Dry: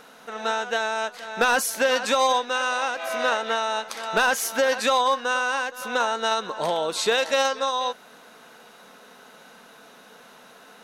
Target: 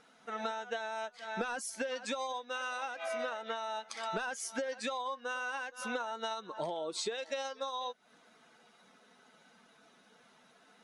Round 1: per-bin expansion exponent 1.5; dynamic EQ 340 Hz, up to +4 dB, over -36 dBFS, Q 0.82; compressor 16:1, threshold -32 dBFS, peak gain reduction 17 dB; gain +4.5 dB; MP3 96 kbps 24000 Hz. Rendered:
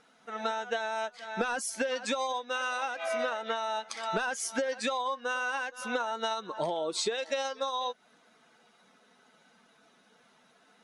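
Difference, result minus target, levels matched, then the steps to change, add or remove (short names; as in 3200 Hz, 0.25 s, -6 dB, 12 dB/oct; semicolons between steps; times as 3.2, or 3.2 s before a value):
compressor: peak gain reduction -5.5 dB
change: compressor 16:1, threshold -38 dBFS, peak gain reduction 23 dB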